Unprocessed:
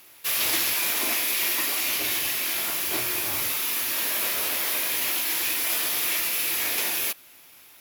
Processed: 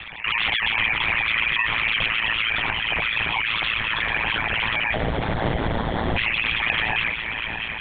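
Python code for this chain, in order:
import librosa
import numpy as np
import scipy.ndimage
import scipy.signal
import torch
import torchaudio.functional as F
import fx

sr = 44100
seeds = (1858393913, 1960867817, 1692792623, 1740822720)

y = fx.sine_speech(x, sr)
y = fx.highpass(y, sr, hz=1000.0, slope=6)
y = y + 10.0 ** (-12.0 / 20.0) * np.pad(y, (int(643 * sr / 1000.0), 0))[:len(y)]
y = fx.sample_hold(y, sr, seeds[0], rate_hz=2600.0, jitter_pct=0, at=(4.94, 6.17))
y = fx.echo_feedback(y, sr, ms=402, feedback_pct=56, wet_db=-18.0)
y = fx.lpc_vocoder(y, sr, seeds[1], excitation='whisper', order=8)
y = y * np.sin(2.0 * np.pi * 56.0 * np.arange(len(y)) / sr)
y = fx.env_flatten(y, sr, amount_pct=50)
y = y * librosa.db_to_amplitude(3.5)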